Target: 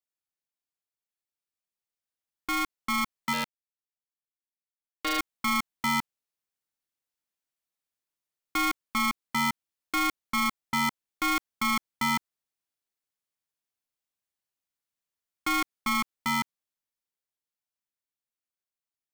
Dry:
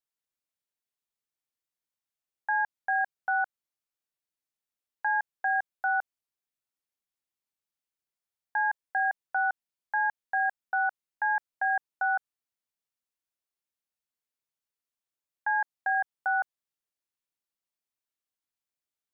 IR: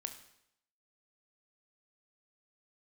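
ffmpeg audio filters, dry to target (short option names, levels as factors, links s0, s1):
-filter_complex "[0:a]dynaudnorm=f=290:g=17:m=1.78,asettb=1/sr,asplit=3[s0][s1][s2];[s0]atrim=end=3.334[s3];[s1]atrim=start=3.33:end=5.19,asetpts=PTS-STARTPTS,afade=t=in:d=0.004:c=qsin,afade=t=out:st=1.856:d=0.004:c=qsin,aeval=exprs='0.188*(cos(1*acos(clip(val(0)/0.188,-1,1)))-cos(1*PI/2))+0.0668*(cos(3*acos(clip(val(0)/0.188,-1,1)))-cos(3*PI/2))':c=same[s4];[s2]atrim=start=5.186[s5];[s3][s4]acrossfade=d=0.004:c1=hsin:c2=qsin[s6];[s6][s5]acrossfade=d=0.004:c1=qsin:c2=hsin,aeval=exprs='val(0)*sgn(sin(2*PI*540*n/s))':c=same,volume=0.596"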